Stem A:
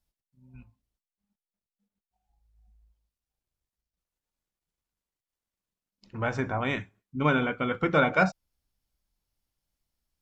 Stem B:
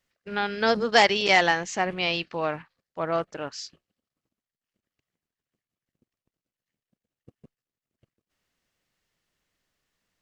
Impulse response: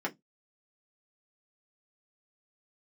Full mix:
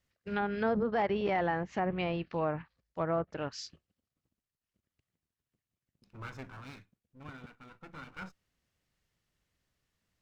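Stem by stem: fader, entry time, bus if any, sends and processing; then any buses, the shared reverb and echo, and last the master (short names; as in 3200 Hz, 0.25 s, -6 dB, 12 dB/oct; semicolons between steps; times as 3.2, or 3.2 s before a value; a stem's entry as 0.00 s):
-11.0 dB, 0.00 s, no send, minimum comb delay 0.77 ms; auto duck -12 dB, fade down 1.10 s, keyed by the second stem
-4.5 dB, 0.00 s, no send, treble ducked by the level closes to 1300 Hz, closed at -23 dBFS; bell 71 Hz +11 dB 2.6 oct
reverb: off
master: limiter -22 dBFS, peak gain reduction 8 dB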